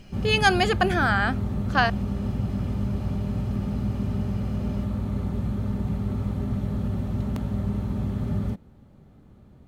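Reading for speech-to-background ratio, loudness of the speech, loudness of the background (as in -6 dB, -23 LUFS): 5.5 dB, -23.0 LUFS, -28.5 LUFS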